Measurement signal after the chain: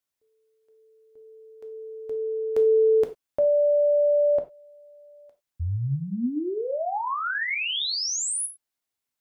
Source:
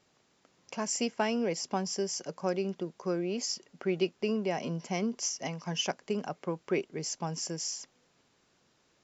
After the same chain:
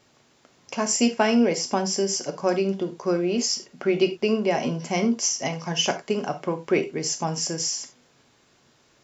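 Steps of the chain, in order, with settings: non-linear reverb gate 0.12 s falling, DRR 6 dB; gain +8 dB

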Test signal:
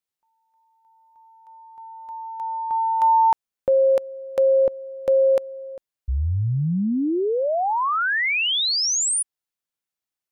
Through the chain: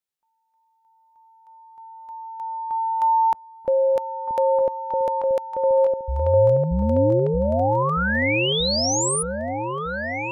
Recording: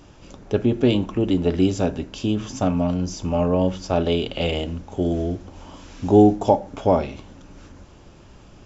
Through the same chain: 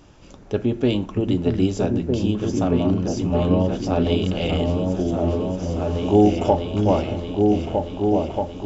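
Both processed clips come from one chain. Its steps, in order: repeats that get brighter 0.629 s, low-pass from 200 Hz, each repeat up 2 oct, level 0 dB; gain -2 dB

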